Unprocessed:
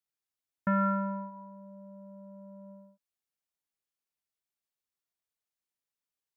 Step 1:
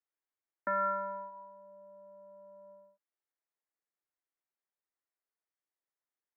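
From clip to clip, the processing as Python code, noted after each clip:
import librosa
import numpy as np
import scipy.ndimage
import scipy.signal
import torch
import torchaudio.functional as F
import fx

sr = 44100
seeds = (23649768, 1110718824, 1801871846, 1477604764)

y = scipy.signal.sosfilt(scipy.signal.ellip(3, 1.0, 40, [300.0, 2000.0], 'bandpass', fs=sr, output='sos'), x)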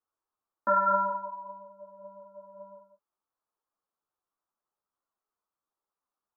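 y = fx.high_shelf_res(x, sr, hz=1600.0, db=-10.0, q=3.0)
y = fx.ensemble(y, sr)
y = y * 10.0 ** (8.0 / 20.0)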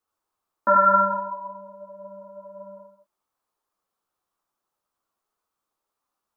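y = x + 10.0 ** (-4.5 / 20.0) * np.pad(x, (int(76 * sr / 1000.0), 0))[:len(x)]
y = y * 10.0 ** (6.5 / 20.0)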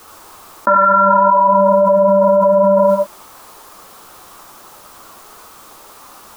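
y = fx.env_flatten(x, sr, amount_pct=100)
y = y * 10.0 ** (3.5 / 20.0)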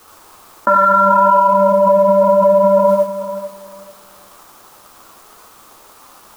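y = fx.law_mismatch(x, sr, coded='A')
y = fx.echo_feedback(y, sr, ms=442, feedback_pct=21, wet_db=-12.5)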